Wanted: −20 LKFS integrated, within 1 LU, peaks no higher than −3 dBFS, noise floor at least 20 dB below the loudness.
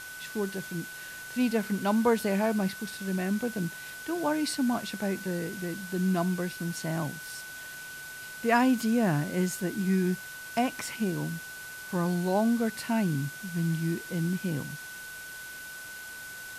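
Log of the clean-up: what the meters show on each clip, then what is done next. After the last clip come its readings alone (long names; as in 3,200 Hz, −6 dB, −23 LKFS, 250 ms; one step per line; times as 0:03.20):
interfering tone 1,500 Hz; level of the tone −41 dBFS; background noise floor −42 dBFS; target noise floor −51 dBFS; integrated loudness −30.5 LKFS; sample peak −12.0 dBFS; target loudness −20.0 LKFS
→ notch filter 1,500 Hz, Q 30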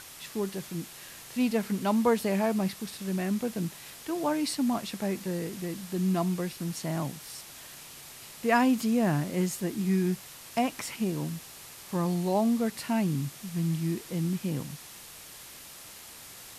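interfering tone none found; background noise floor −47 dBFS; target noise floor −50 dBFS
→ broadband denoise 6 dB, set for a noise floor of −47 dBFS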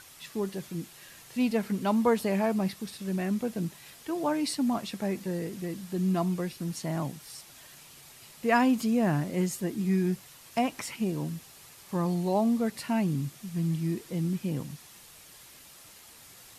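background noise floor −52 dBFS; integrated loudness −30.0 LKFS; sample peak −12.0 dBFS; target loudness −20.0 LKFS
→ level +10 dB
brickwall limiter −3 dBFS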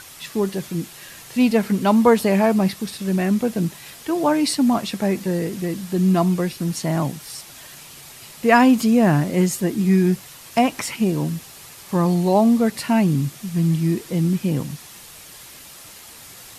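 integrated loudness −20.0 LKFS; sample peak −3.0 dBFS; background noise floor −42 dBFS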